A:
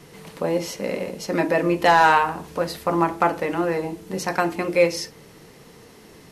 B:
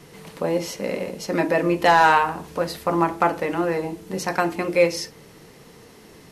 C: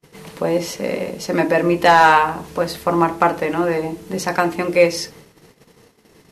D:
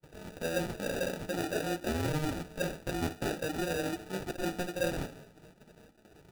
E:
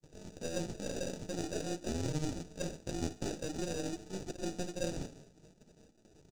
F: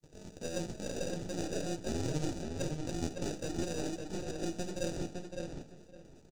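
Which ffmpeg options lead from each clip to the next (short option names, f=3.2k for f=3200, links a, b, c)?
-af anull
-af "agate=range=-36dB:threshold=-45dB:ratio=16:detection=peak,volume=4dB"
-af "areverse,acompressor=threshold=-24dB:ratio=5,areverse,acrusher=samples=41:mix=1:aa=0.000001,flanger=delay=2:depth=5.6:regen=-57:speed=0.48:shape=triangular,volume=-2.5dB"
-af "aeval=exprs='if(lt(val(0),0),0.447*val(0),val(0))':c=same,firequalizer=gain_entry='entry(320,0);entry(1200,-10);entry(6400,7);entry(12000,-13)':delay=0.05:min_phase=1,volume=-1dB"
-filter_complex "[0:a]asplit=2[a][b];[b]adelay=560,lowpass=f=3.6k:p=1,volume=-4dB,asplit=2[c][d];[d]adelay=560,lowpass=f=3.6k:p=1,volume=0.2,asplit=2[e][f];[f]adelay=560,lowpass=f=3.6k:p=1,volume=0.2[g];[a][c][e][g]amix=inputs=4:normalize=0"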